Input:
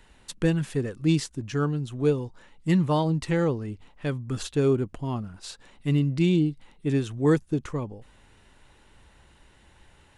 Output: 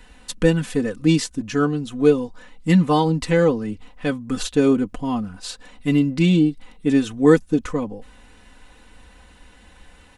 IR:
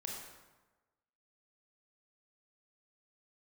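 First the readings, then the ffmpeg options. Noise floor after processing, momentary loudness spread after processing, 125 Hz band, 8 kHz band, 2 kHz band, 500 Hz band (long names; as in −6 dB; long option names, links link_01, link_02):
−49 dBFS, 12 LU, +2.0 dB, +7.0 dB, +8.0 dB, +7.0 dB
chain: -af "aecho=1:1:4:0.75,volume=5.5dB"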